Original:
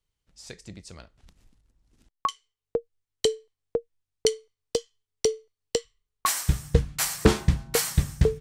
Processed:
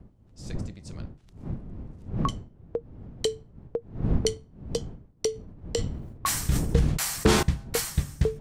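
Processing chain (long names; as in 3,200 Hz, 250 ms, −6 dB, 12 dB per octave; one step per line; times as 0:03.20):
wind on the microphone 150 Hz −32 dBFS
0:05.32–0:07.43: level that may fall only so fast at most 50 dB per second
level −3.5 dB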